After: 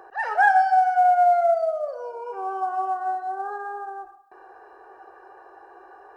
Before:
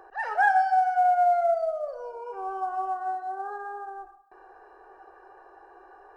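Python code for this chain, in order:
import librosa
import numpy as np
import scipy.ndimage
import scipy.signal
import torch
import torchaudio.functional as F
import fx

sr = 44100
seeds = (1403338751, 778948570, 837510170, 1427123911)

y = fx.highpass(x, sr, hz=120.0, slope=6)
y = F.gain(torch.from_numpy(y), 4.0).numpy()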